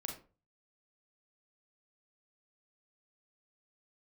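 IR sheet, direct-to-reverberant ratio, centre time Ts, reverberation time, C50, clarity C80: 1.0 dB, 25 ms, 0.35 s, 6.5 dB, 12.5 dB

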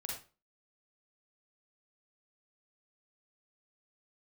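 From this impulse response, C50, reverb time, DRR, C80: 1.5 dB, 0.35 s, -2.5 dB, 8.0 dB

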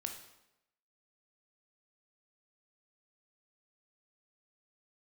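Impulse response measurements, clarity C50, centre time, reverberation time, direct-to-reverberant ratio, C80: 7.0 dB, 23 ms, 0.90 s, 3.5 dB, 10.0 dB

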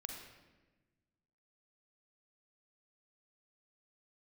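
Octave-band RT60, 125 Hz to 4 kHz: 1.9, 1.8, 1.4, 1.1, 1.1, 0.90 s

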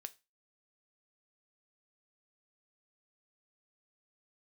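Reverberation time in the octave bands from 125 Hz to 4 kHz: 0.30, 0.30, 0.25, 0.25, 0.25, 0.25 s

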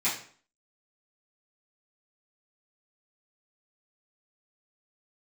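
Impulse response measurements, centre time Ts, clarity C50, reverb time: 32 ms, 6.5 dB, 0.50 s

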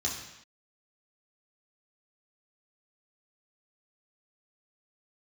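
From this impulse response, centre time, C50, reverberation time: 42 ms, 4.5 dB, not exponential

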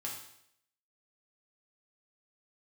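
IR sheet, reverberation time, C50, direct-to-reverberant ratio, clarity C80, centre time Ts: 0.75 s, 4.0 dB, -3.5 dB, 7.5 dB, 37 ms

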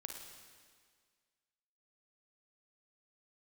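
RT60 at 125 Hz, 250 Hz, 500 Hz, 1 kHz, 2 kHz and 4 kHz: 1.7, 1.8, 1.8, 1.8, 1.8, 1.8 s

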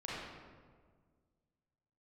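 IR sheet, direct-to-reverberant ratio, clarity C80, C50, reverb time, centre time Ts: -7.5 dB, 0.0 dB, -3.5 dB, 1.7 s, 0.11 s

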